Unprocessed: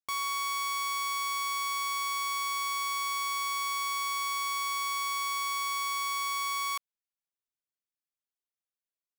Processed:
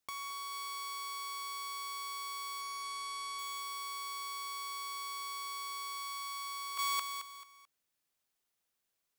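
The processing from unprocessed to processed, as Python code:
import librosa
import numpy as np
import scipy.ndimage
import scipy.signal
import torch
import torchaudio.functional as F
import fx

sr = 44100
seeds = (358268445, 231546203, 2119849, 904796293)

y = fx.lowpass(x, sr, hz=11000.0, slope=24, at=(2.61, 3.39))
y = fx.hum_notches(y, sr, base_hz=60, count=7, at=(5.95, 6.47))
y = fx.echo_feedback(y, sr, ms=219, feedback_pct=32, wet_db=-8)
y = fx.over_compress(y, sr, threshold_db=-42.0, ratio=-1.0)
y = fx.highpass(y, sr, hz=210.0, slope=24, at=(0.66, 1.42))
y = y * librosa.db_to_amplitude(1.0)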